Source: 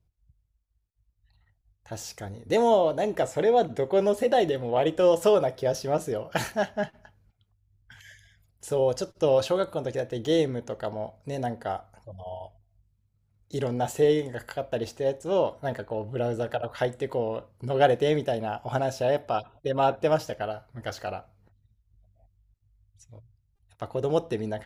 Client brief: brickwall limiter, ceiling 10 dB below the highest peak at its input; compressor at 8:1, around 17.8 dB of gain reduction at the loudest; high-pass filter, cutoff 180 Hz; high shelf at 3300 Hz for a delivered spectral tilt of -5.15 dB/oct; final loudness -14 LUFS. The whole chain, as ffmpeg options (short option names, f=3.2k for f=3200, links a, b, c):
-af "highpass=180,highshelf=f=3.3k:g=-5.5,acompressor=threshold=-35dB:ratio=8,volume=28dB,alimiter=limit=-2.5dB:level=0:latency=1"